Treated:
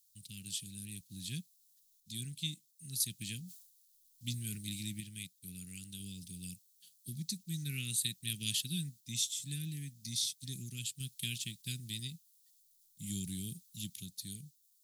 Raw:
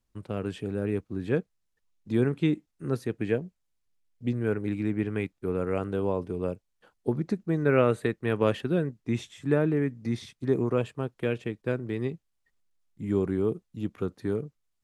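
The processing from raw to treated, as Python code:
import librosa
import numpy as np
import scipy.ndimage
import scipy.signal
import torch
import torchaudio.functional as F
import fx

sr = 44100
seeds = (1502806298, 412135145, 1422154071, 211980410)

y = fx.tilt_eq(x, sr, slope=4.5)
y = fx.tremolo_random(y, sr, seeds[0], hz=1.0, depth_pct=55)
y = scipy.signal.sosfilt(scipy.signal.ellip(3, 1.0, 80, [170.0, 3700.0], 'bandstop', fs=sr, output='sos'), y)
y = fx.high_shelf(y, sr, hz=7600.0, db=6.0)
y = fx.sustainer(y, sr, db_per_s=79.0, at=(3.35, 4.85))
y = F.gain(torch.from_numpy(y), 6.0).numpy()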